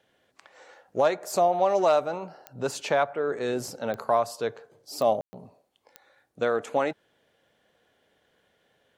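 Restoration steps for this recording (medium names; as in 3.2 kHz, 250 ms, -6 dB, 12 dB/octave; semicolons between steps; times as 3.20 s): de-click; room tone fill 5.21–5.33 s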